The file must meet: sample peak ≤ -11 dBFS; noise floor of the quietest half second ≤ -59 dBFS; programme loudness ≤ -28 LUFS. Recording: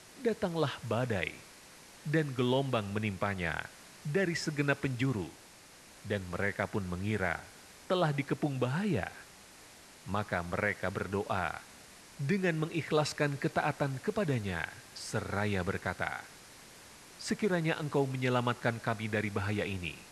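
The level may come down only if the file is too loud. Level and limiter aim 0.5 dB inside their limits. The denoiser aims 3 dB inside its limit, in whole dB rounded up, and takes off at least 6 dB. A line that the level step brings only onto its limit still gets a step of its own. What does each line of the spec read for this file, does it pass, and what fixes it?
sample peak -12.5 dBFS: OK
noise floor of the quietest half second -55 dBFS: fail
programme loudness -33.5 LUFS: OK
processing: denoiser 7 dB, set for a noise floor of -55 dBFS

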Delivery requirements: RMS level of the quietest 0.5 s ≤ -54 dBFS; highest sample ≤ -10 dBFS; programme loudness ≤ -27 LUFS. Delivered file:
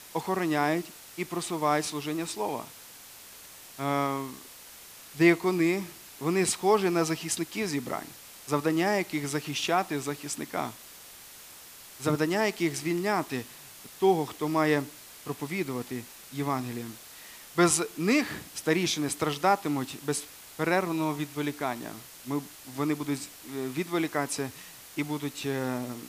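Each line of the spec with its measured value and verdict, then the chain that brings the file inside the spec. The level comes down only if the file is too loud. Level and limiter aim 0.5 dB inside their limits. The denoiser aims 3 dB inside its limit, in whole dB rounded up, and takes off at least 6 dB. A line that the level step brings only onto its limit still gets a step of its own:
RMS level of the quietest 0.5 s -49 dBFS: fail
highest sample -7.5 dBFS: fail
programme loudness -29.0 LUFS: OK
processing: denoiser 8 dB, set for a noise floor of -49 dBFS; limiter -10.5 dBFS

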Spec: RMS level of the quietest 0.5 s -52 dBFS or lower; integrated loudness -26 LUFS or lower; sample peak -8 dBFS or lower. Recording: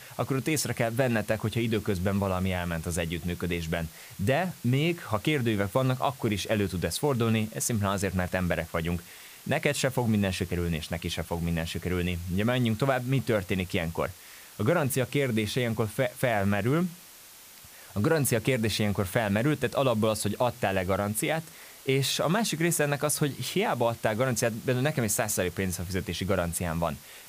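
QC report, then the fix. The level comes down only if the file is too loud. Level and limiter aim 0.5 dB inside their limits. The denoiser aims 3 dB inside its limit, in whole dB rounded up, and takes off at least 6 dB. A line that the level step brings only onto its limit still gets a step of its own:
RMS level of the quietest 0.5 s -50 dBFS: fail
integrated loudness -28.0 LUFS: OK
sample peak -10.5 dBFS: OK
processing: denoiser 6 dB, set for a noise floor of -50 dBFS

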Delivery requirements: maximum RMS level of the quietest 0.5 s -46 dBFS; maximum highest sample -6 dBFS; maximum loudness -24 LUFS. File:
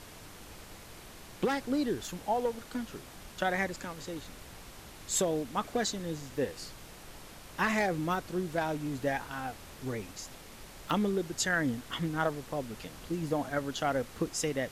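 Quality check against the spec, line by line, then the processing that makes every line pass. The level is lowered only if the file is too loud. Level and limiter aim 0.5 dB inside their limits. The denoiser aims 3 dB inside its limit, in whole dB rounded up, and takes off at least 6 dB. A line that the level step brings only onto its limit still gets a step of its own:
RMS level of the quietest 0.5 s -49 dBFS: OK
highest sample -15.0 dBFS: OK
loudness -33.5 LUFS: OK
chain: none

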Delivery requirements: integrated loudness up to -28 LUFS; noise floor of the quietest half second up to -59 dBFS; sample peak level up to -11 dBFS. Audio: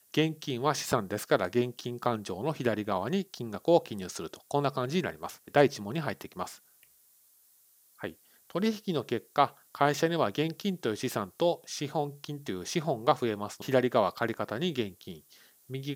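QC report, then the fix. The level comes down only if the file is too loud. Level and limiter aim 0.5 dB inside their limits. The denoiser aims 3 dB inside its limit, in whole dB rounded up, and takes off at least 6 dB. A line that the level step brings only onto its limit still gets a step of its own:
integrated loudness -30.5 LUFS: OK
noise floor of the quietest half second -63 dBFS: OK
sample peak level -8.0 dBFS: fail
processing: limiter -11.5 dBFS

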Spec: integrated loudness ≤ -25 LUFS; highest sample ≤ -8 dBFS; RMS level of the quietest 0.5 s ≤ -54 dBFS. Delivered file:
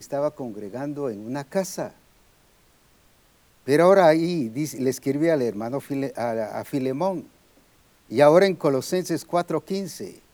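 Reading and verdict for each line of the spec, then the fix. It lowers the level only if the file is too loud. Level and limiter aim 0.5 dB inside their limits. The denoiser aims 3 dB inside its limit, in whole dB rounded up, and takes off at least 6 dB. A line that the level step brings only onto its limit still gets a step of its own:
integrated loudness -23.0 LUFS: fail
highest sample -4.0 dBFS: fail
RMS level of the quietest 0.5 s -59 dBFS: OK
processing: gain -2.5 dB; limiter -8.5 dBFS

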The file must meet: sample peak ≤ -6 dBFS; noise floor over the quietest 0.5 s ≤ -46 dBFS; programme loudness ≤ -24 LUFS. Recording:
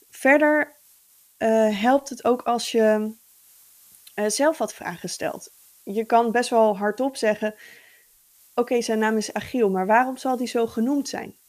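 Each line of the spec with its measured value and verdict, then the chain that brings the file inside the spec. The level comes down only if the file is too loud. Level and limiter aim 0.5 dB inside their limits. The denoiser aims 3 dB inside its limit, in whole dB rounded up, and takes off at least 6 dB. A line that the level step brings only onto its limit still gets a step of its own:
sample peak -3.5 dBFS: fail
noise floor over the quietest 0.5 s -57 dBFS: OK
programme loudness -22.5 LUFS: fail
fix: gain -2 dB; limiter -6.5 dBFS

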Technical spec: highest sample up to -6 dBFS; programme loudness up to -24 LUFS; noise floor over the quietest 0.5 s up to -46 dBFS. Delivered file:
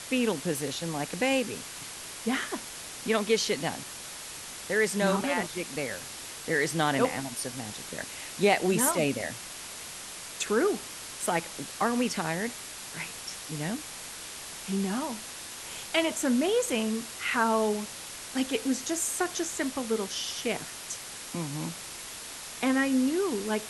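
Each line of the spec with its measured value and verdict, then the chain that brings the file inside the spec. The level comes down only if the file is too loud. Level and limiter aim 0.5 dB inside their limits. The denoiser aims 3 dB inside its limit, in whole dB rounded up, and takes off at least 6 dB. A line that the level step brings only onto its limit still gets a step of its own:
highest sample -11.0 dBFS: OK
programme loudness -30.0 LUFS: OK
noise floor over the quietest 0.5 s -42 dBFS: fail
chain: denoiser 7 dB, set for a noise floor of -42 dBFS

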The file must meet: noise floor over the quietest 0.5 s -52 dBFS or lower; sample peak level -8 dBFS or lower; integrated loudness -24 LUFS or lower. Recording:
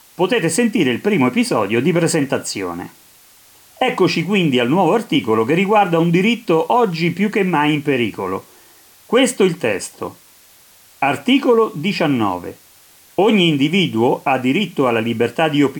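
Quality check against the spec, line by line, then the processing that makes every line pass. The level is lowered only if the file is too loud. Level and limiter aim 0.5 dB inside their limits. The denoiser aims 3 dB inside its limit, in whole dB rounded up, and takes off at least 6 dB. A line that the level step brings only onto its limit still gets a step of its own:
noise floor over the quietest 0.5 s -48 dBFS: fail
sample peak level -4.0 dBFS: fail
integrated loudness -16.5 LUFS: fail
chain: gain -8 dB

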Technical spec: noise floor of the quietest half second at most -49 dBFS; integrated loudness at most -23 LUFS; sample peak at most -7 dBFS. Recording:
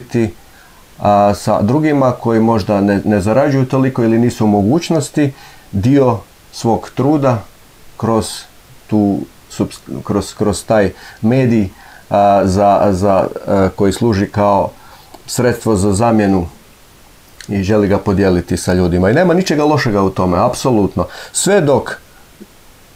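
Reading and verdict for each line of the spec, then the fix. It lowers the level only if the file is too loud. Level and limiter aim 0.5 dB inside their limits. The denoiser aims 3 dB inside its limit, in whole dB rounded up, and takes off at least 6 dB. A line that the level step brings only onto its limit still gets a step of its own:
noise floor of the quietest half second -43 dBFS: fail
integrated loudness -14.0 LUFS: fail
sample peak -2.5 dBFS: fail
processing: gain -9.5 dB

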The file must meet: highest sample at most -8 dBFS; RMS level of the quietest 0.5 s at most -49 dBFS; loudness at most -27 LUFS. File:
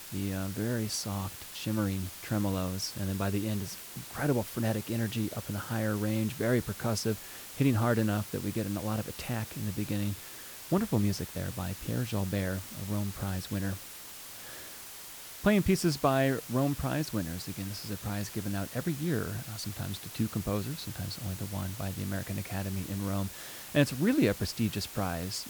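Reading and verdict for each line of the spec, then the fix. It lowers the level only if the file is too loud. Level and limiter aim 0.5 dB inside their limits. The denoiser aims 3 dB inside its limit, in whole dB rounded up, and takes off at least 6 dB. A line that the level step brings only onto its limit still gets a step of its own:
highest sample -11.5 dBFS: OK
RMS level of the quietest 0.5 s -46 dBFS: fail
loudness -32.5 LUFS: OK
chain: denoiser 6 dB, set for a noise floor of -46 dBFS

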